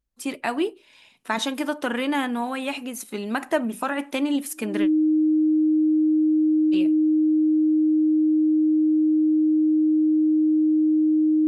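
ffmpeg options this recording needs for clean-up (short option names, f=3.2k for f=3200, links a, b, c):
-af "bandreject=f=310:w=30"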